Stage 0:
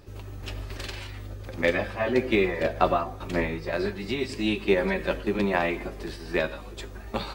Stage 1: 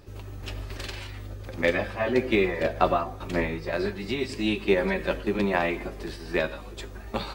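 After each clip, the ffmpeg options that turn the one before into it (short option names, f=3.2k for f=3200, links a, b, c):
-af anull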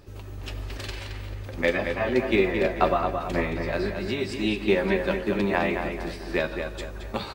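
-filter_complex "[0:a]asplit=2[a][b];[b]adelay=221,lowpass=f=4.2k:p=1,volume=-6dB,asplit=2[c][d];[d]adelay=221,lowpass=f=4.2k:p=1,volume=0.41,asplit=2[e][f];[f]adelay=221,lowpass=f=4.2k:p=1,volume=0.41,asplit=2[g][h];[h]adelay=221,lowpass=f=4.2k:p=1,volume=0.41,asplit=2[i][j];[j]adelay=221,lowpass=f=4.2k:p=1,volume=0.41[k];[a][c][e][g][i][k]amix=inputs=6:normalize=0"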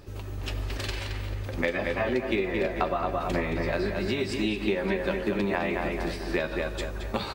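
-af "acompressor=threshold=-26dB:ratio=6,volume=2.5dB"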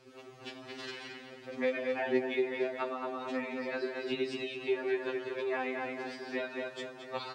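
-af "acrusher=bits=8:mix=0:aa=0.000001,highpass=210,lowpass=5.6k,afftfilt=real='re*2.45*eq(mod(b,6),0)':imag='im*2.45*eq(mod(b,6),0)':win_size=2048:overlap=0.75,volume=-4.5dB"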